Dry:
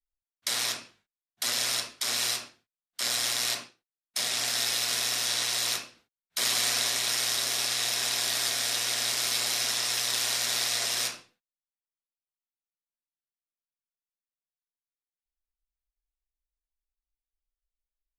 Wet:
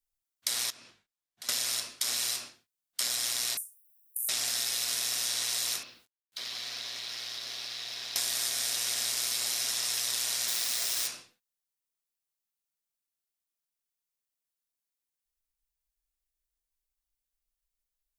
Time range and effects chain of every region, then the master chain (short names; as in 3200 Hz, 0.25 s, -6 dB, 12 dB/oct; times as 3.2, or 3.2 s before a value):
0.7–1.49 high shelf 8100 Hz -11 dB + compressor 3:1, threshold -51 dBFS
3.57–4.29 RIAA curve recording + negative-ratio compressor -27 dBFS, ratio -0.5 + inverse Chebyshev band-stop 120–4700 Hz, stop band 50 dB
5.83–8.16 resonant high shelf 6100 Hz -12 dB, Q 1.5 + compressor 3:1, threshold -44 dBFS + requantised 12-bit, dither none
10.48–11.07 low shelf 330 Hz -9 dB + requantised 6-bit, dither triangular
whole clip: high shelf 4500 Hz +9 dB; compressor 6:1, threshold -28 dBFS